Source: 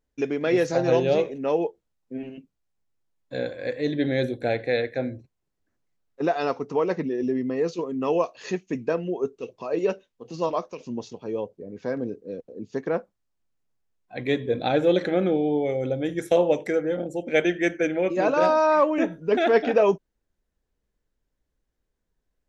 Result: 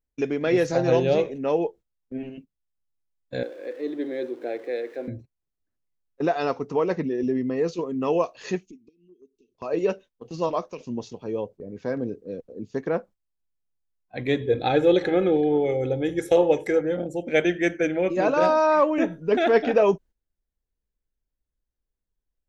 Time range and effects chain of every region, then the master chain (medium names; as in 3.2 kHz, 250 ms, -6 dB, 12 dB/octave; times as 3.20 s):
3.43–5.08 s: jump at every zero crossing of -37 dBFS + ladder high-pass 300 Hz, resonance 55% + treble shelf 4.8 kHz -9 dB
8.65–9.55 s: compression 8:1, threshold -40 dBFS + brick-wall FIR band-stop 510–1800 Hz + static phaser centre 500 Hz, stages 6
14.41–16.81 s: comb 2.4 ms, depth 46% + delay 381 ms -22 dB
whole clip: gate -44 dBFS, range -12 dB; bass shelf 84 Hz +9 dB